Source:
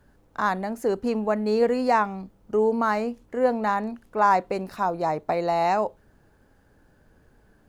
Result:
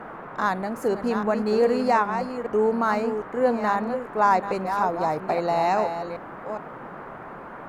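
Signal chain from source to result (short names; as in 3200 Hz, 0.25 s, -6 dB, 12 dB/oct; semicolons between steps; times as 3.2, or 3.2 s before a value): reverse delay 0.411 s, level -7.5 dB; band noise 130–1400 Hz -39 dBFS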